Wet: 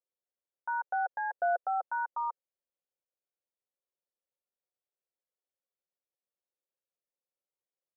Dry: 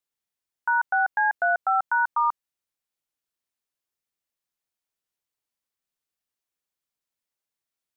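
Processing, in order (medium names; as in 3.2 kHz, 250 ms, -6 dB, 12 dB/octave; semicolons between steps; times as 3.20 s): band-pass filter 510 Hz, Q 3.2; comb 5.5 ms, depth 42%; trim +2 dB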